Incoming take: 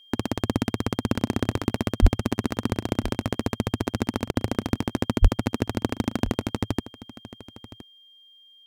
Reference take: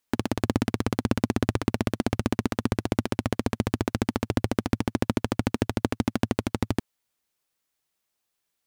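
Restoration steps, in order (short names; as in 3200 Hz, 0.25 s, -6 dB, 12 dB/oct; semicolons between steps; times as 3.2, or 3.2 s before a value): notch 3200 Hz, Q 30; 2.01–2.13 HPF 140 Hz 24 dB/oct; 5.21–5.33 HPF 140 Hz 24 dB/oct; interpolate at 4.31, 44 ms; inverse comb 1.017 s -17.5 dB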